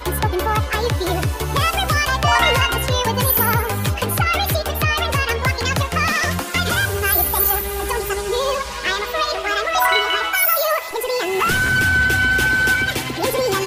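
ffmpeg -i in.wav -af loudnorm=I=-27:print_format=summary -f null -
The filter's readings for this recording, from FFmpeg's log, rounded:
Input Integrated:    -17.8 LUFS
Input True Peak:      -4.7 dBTP
Input LRA:             1.5 LU
Input Threshold:     -27.8 LUFS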